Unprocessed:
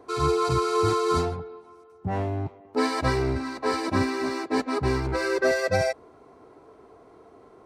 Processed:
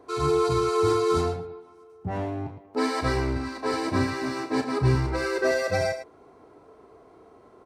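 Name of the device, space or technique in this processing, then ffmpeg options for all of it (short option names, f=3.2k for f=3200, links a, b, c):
slapback doubling: -filter_complex "[0:a]asettb=1/sr,asplit=3[a][b][c];[a]atrim=end=3.624[d];[b]atrim=start=3.62:end=4.95,asetpts=PTS-STARTPTS,afade=t=in:d=0.004:c=qsin,afade=t=out:st=1.326:d=0.004:c=qsin,equalizer=f=130:t=o:w=0.26:g=14.5[e];[c]atrim=start=4.946[f];[d][e]acrossfade=d=0.004:c1=hsin:c2=qsin[g];[g][f]acrossfade=d=0.004:c1=qsin:c2=hsin,asplit=3[h][i][j];[i]adelay=34,volume=-8dB[k];[j]adelay=109,volume=-10dB[l];[h][k][l]amix=inputs=3:normalize=0,volume=-2dB"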